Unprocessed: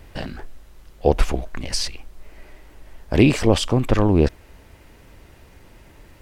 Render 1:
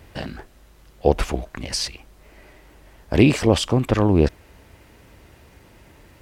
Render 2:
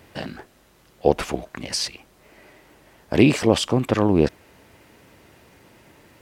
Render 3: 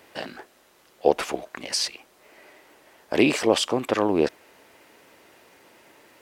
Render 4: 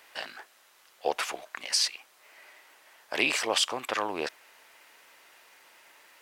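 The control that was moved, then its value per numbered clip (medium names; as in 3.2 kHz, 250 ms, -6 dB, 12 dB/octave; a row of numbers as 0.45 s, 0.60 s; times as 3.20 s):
high-pass, cutoff frequency: 48 Hz, 130 Hz, 350 Hz, 970 Hz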